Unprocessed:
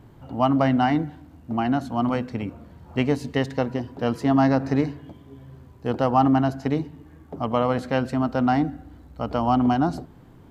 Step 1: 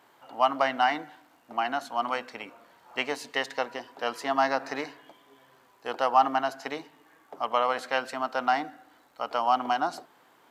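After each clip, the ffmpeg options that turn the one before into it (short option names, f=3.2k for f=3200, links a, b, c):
-af "highpass=830,volume=2.5dB"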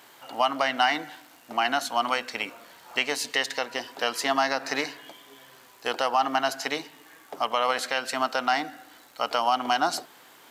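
-af "highshelf=f=2.1k:g=10.5,alimiter=limit=-15dB:level=0:latency=1:release=261,equalizer=f=1k:w=1.5:g=-2.5,volume=5dB"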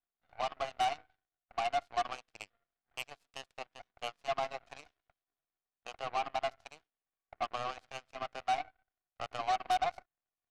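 -filter_complex "[0:a]acrossover=split=190|1900|4700[a][b][c][d];[b]asoftclip=type=tanh:threshold=-24.5dB[e];[a][e][c][d]amix=inputs=4:normalize=0,asplit=3[f][g][h];[f]bandpass=f=730:t=q:w=8,volume=0dB[i];[g]bandpass=f=1.09k:t=q:w=8,volume=-6dB[j];[h]bandpass=f=2.44k:t=q:w=8,volume=-9dB[k];[i][j][k]amix=inputs=3:normalize=0,aeval=exprs='0.075*(cos(1*acos(clip(val(0)/0.075,-1,1)))-cos(1*PI/2))+0.00944*(cos(4*acos(clip(val(0)/0.075,-1,1)))-cos(4*PI/2))+0.00376*(cos(5*acos(clip(val(0)/0.075,-1,1)))-cos(5*PI/2))+0.00841*(cos(6*acos(clip(val(0)/0.075,-1,1)))-cos(6*PI/2))+0.0133*(cos(7*acos(clip(val(0)/0.075,-1,1)))-cos(7*PI/2))':c=same"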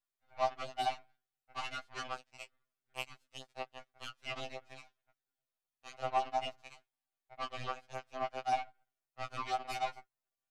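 -af "afftfilt=real='re*2.45*eq(mod(b,6),0)':imag='im*2.45*eq(mod(b,6),0)':win_size=2048:overlap=0.75,volume=1dB"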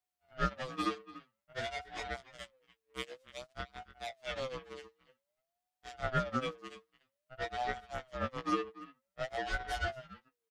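-filter_complex "[0:a]asplit=2[a][b];[b]adelay=290,highpass=300,lowpass=3.4k,asoftclip=type=hard:threshold=-27dB,volume=-16dB[c];[a][c]amix=inputs=2:normalize=0,asubboost=boost=2:cutoff=170,aeval=exprs='val(0)*sin(2*PI*590*n/s+590*0.25/0.52*sin(2*PI*0.52*n/s))':c=same,volume=3dB"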